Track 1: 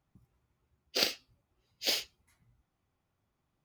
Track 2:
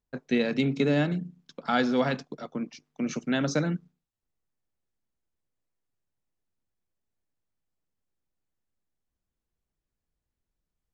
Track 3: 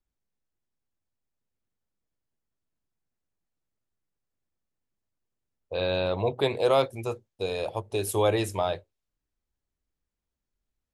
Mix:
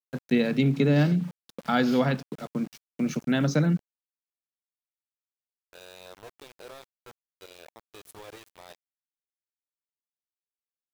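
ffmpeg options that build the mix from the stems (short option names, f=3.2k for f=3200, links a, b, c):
-filter_complex "[0:a]alimiter=limit=-20dB:level=0:latency=1:release=36,volume=-11dB[a];[1:a]equalizer=f=150:w=1.2:g=7,volume=0dB[b];[2:a]highpass=f=290:p=1,alimiter=limit=-20.5dB:level=0:latency=1:release=43,volume=-15dB[c];[a][b][c]amix=inputs=3:normalize=0,aeval=exprs='val(0)*gte(abs(val(0)),0.0075)':c=same,adynamicequalizer=threshold=0.00631:dfrequency=4300:dqfactor=0.7:tfrequency=4300:tqfactor=0.7:attack=5:release=100:ratio=0.375:range=2:mode=cutabove:tftype=highshelf"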